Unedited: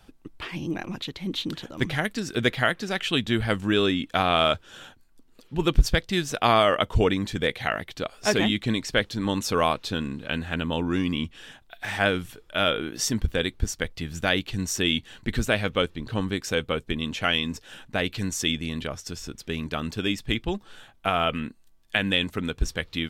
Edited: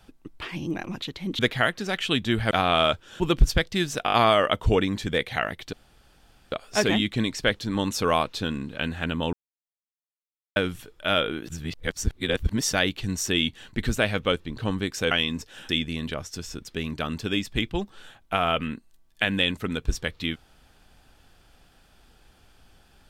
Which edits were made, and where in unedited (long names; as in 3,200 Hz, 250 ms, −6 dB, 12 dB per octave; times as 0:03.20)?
0:01.39–0:02.41: remove
0:03.53–0:04.12: remove
0:04.81–0:05.57: remove
0:06.42: stutter 0.02 s, 5 plays
0:08.02: splice in room tone 0.79 s
0:10.83–0:12.06: silence
0:12.98–0:14.23: reverse
0:16.61–0:17.26: remove
0:17.84–0:18.42: remove